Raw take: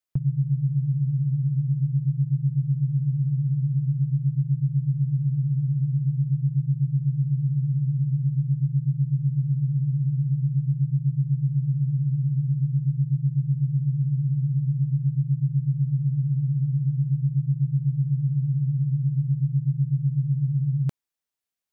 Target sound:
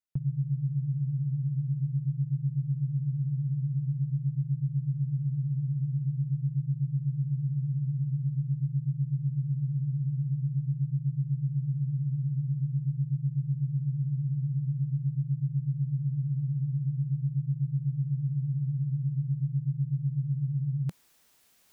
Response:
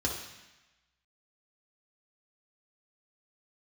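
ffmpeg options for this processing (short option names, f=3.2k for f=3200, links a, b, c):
-af "equalizer=f=180:w=1.5:g=2.5,areverse,acompressor=mode=upward:threshold=-32dB:ratio=2.5,areverse,volume=-7.5dB"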